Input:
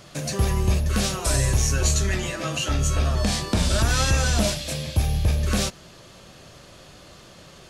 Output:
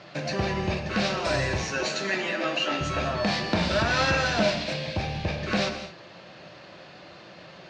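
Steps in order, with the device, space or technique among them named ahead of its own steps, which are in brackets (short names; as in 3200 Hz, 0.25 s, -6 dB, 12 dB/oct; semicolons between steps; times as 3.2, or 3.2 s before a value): 1.63–2.81 HPF 200 Hz 24 dB/oct; kitchen radio (speaker cabinet 200–4100 Hz, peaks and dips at 250 Hz -7 dB, 430 Hz -6 dB, 1200 Hz -5 dB, 3300 Hz -7 dB); non-linear reverb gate 0.25 s flat, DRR 7.5 dB; gain +4 dB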